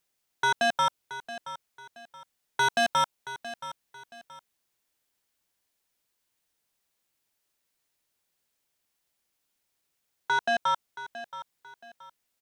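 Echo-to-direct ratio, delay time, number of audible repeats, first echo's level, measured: −13.5 dB, 675 ms, 2, −14.0 dB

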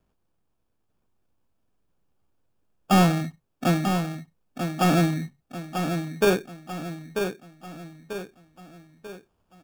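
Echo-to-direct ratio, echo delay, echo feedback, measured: −6.0 dB, 941 ms, 45%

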